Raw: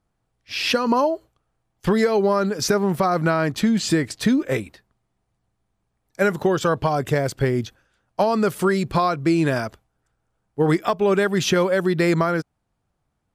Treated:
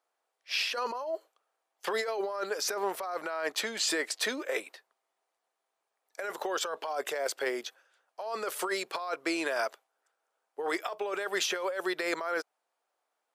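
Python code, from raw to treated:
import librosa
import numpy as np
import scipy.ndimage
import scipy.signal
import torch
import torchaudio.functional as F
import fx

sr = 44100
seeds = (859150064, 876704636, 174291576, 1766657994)

y = scipy.signal.sosfilt(scipy.signal.butter(4, 480.0, 'highpass', fs=sr, output='sos'), x)
y = fx.over_compress(y, sr, threshold_db=-27.0, ratio=-1.0)
y = y * librosa.db_to_amplitude(-5.0)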